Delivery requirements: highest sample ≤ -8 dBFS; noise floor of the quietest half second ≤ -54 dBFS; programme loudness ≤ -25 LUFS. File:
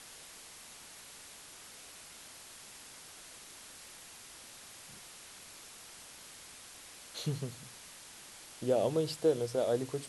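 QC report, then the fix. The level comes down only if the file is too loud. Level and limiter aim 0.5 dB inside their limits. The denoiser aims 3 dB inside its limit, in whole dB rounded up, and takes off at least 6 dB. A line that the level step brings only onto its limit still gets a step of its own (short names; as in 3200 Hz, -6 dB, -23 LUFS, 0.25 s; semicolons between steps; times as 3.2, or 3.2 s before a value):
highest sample -17.5 dBFS: OK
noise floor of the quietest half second -52 dBFS: fail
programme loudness -39.5 LUFS: OK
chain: denoiser 6 dB, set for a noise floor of -52 dBFS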